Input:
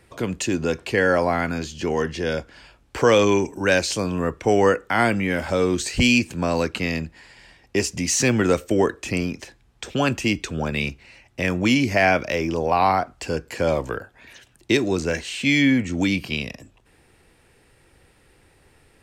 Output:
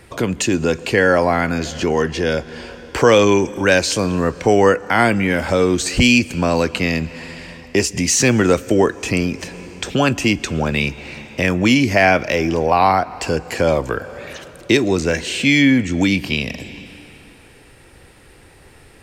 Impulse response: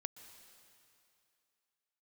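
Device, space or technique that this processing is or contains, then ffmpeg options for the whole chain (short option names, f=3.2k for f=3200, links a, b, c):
compressed reverb return: -filter_complex "[0:a]asplit=2[a][b];[1:a]atrim=start_sample=2205[c];[b][c]afir=irnorm=-1:irlink=0,acompressor=threshold=-36dB:ratio=5,volume=5.5dB[d];[a][d]amix=inputs=2:normalize=0,volume=3dB"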